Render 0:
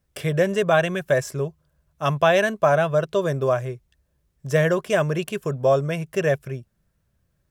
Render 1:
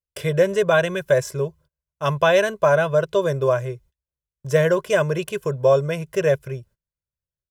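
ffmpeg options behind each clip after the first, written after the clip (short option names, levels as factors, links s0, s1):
-af "agate=range=0.0447:threshold=0.00355:ratio=16:detection=peak,aecho=1:1:2:0.56"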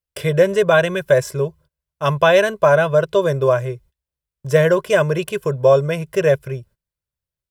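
-af "equalizer=f=6500:t=o:w=0.33:g=-4,volume=1.5"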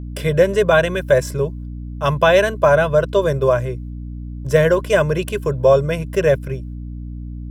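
-af "aeval=exprs='val(0)+0.0398*(sin(2*PI*60*n/s)+sin(2*PI*2*60*n/s)/2+sin(2*PI*3*60*n/s)/3+sin(2*PI*4*60*n/s)/4+sin(2*PI*5*60*n/s)/5)':c=same"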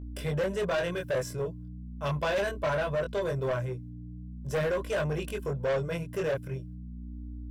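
-af "flanger=delay=20:depth=3.7:speed=0.4,asoftclip=type=tanh:threshold=0.133,volume=0.447"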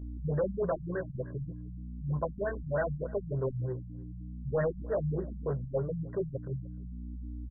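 -af "aecho=1:1:303:0.0708,afftfilt=real='re*lt(b*sr/1024,200*pow(2000/200,0.5+0.5*sin(2*PI*3.3*pts/sr)))':imag='im*lt(b*sr/1024,200*pow(2000/200,0.5+0.5*sin(2*PI*3.3*pts/sr)))':win_size=1024:overlap=0.75"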